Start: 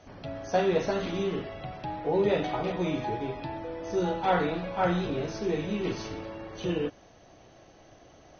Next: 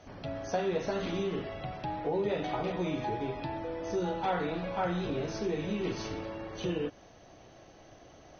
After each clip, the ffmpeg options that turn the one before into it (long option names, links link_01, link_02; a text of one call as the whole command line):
ffmpeg -i in.wav -af "acompressor=threshold=-30dB:ratio=2.5" out.wav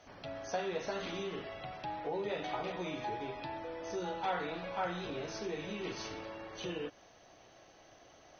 ffmpeg -i in.wav -af "lowshelf=frequency=440:gain=-10.5,volume=-1dB" out.wav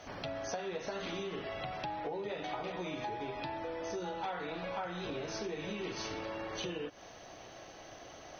ffmpeg -i in.wav -af "acompressor=threshold=-45dB:ratio=6,volume=8.5dB" out.wav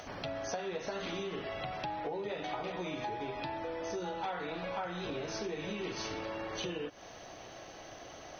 ffmpeg -i in.wav -af "acompressor=mode=upward:threshold=-46dB:ratio=2.5,volume=1dB" out.wav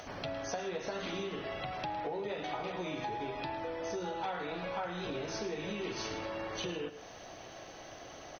ffmpeg -i in.wav -af "aecho=1:1:108|158:0.211|0.119" out.wav